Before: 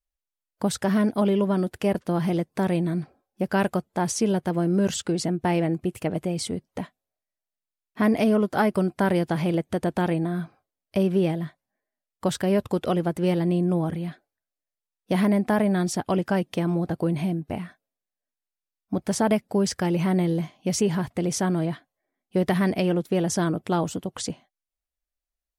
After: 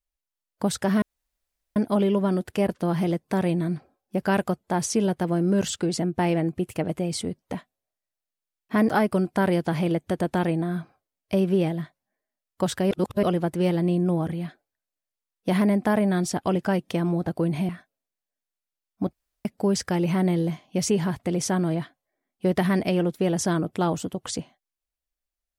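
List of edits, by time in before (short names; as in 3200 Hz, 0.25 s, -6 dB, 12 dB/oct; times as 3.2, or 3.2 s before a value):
1.02 insert room tone 0.74 s
8.15–8.52 cut
12.54–12.86 reverse
17.32–17.6 cut
19.04–19.36 room tone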